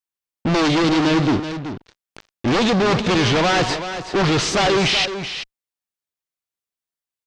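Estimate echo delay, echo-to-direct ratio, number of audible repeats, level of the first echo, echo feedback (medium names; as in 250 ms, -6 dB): 379 ms, -10.0 dB, 1, -10.0 dB, no regular repeats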